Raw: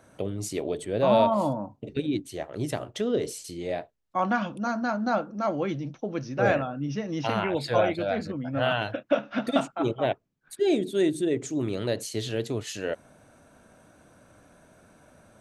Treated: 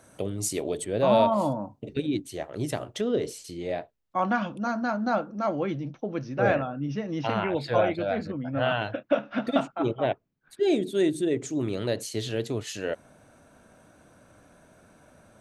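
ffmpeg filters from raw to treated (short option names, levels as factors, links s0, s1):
-af "asetnsamples=n=441:p=0,asendcmd='0.84 equalizer g 1.5;3.01 equalizer g -4.5;5.59 equalizer g -11;10.63 equalizer g -0.5',equalizer=f=9800:t=o:w=1.5:g=8.5"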